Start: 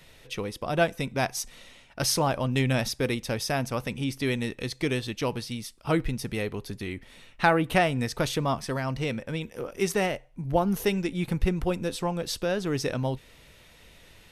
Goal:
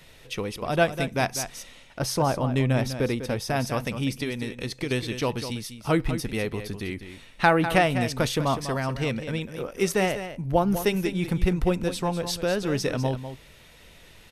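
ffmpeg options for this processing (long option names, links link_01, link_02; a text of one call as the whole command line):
ffmpeg -i in.wav -filter_complex "[0:a]asettb=1/sr,asplit=3[link_01][link_02][link_03];[link_01]atrim=end=4.234[link_04];[link_02]atrim=start=4.23:end=4.91,asetpts=PTS-STARTPTS,afade=type=in:duration=0.004:curve=qsin,afade=type=out:start_time=0.676:duration=0.004:curve=qsin,acompressor=threshold=-29dB:ratio=5[link_05];[link_03]atrim=start=4.906[link_06];[link_04][link_05]acrossfade=duration=0.004:curve1=hsin:curve2=qsin[link_07];[link_07][link_06]acrossfade=duration=0.004:curve1=qsin:curve2=hsin,aecho=1:1:199:0.299,asettb=1/sr,asplit=3[link_08][link_09][link_10];[link_08]atrim=end=1.994[link_11];[link_09]atrim=start=1.99:end=3.56,asetpts=PTS-STARTPTS,afade=type=in:duration=0.004:curve=qsin,afade=type=out:start_time=1.566:duration=0.004:curve=qsin,adynamicequalizer=threshold=0.00794:dfrequency=1600:dqfactor=0.7:tfrequency=1600:tqfactor=0.7:attack=5:release=100:ratio=0.375:range=3.5:mode=cutabove:tftype=highshelf[link_12];[link_10]atrim=start=3.556[link_13];[link_11][link_12]acrossfade=duration=0.004:curve1=hsin:curve2=qsin[link_14];[link_14][link_13]acrossfade=duration=0.004:curve1=qsin:curve2=hsin,volume=2dB" out.wav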